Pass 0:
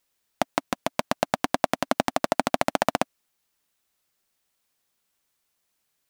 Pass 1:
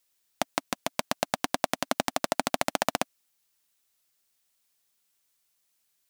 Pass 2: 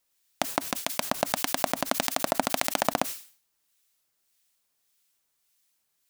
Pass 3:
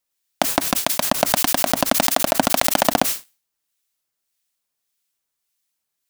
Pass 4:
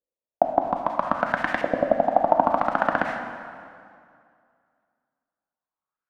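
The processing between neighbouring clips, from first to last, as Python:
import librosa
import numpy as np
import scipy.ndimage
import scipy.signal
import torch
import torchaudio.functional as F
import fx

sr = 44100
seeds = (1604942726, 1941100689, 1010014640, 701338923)

y1 = fx.high_shelf(x, sr, hz=2500.0, db=8.5)
y1 = F.gain(torch.from_numpy(y1), -5.5).numpy()
y2 = fx.harmonic_tremolo(y1, sr, hz=1.7, depth_pct=50, crossover_hz=1500.0)
y2 = fx.sustainer(y2, sr, db_per_s=130.0)
y2 = F.gain(torch.from_numpy(y2), 3.0).numpy()
y3 = fx.leveller(y2, sr, passes=3)
y3 = F.gain(torch.from_numpy(y3), 2.0).numpy()
y4 = fx.filter_lfo_lowpass(y3, sr, shape='saw_up', hz=0.62, low_hz=470.0, high_hz=2000.0, q=4.6)
y4 = fx.rev_plate(y4, sr, seeds[0], rt60_s=2.3, hf_ratio=0.8, predelay_ms=0, drr_db=4.5)
y4 = F.gain(torch.from_numpy(y4), -8.5).numpy()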